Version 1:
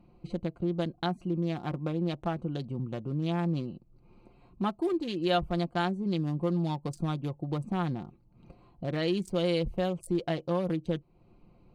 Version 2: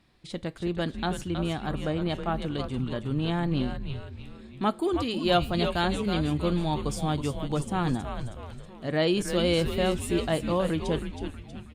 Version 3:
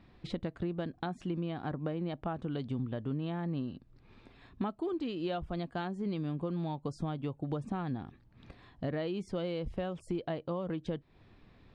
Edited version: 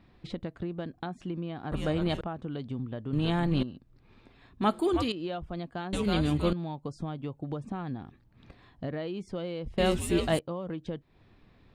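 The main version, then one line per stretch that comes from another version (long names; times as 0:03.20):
3
0:01.72–0:02.21: punch in from 2
0:03.13–0:03.63: punch in from 2
0:04.62–0:05.12: punch in from 2
0:05.93–0:06.53: punch in from 2
0:09.78–0:10.39: punch in from 2
not used: 1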